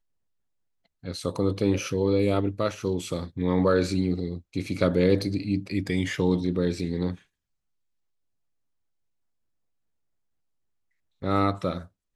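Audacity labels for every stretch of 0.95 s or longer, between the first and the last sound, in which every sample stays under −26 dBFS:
7.120000	11.240000	silence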